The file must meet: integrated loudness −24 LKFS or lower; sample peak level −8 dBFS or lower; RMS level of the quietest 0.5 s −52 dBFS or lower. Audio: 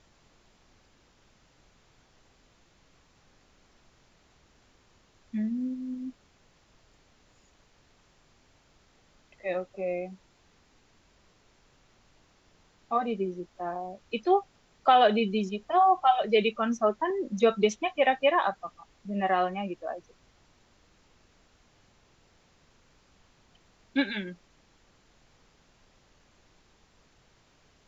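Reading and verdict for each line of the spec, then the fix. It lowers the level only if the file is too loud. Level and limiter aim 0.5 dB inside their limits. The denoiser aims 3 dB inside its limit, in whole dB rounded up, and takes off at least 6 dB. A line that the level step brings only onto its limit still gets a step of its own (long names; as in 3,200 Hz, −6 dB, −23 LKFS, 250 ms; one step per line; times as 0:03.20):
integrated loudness −27.5 LKFS: in spec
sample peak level −9.0 dBFS: in spec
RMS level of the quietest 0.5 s −63 dBFS: in spec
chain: no processing needed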